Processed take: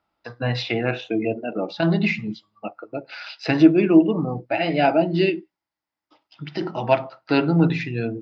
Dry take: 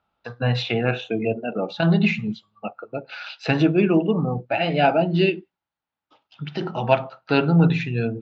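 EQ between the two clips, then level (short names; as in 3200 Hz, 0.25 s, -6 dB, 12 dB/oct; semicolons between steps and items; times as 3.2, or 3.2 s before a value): thirty-one-band EQ 315 Hz +11 dB, 630 Hz +4 dB, 1000 Hz +4 dB, 2000 Hz +8 dB, 5000 Hz +11 dB; -3.5 dB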